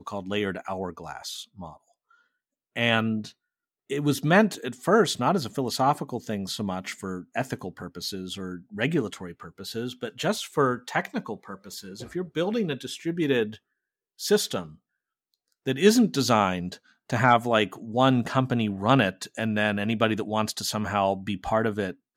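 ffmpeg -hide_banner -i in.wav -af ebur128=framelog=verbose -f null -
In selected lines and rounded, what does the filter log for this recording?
Integrated loudness:
  I:         -26.0 LUFS
  Threshold: -36.7 LUFS
Loudness range:
  LRA:         7.6 LU
  Threshold: -46.7 LUFS
  LRA low:   -31.2 LUFS
  LRA high:  -23.6 LUFS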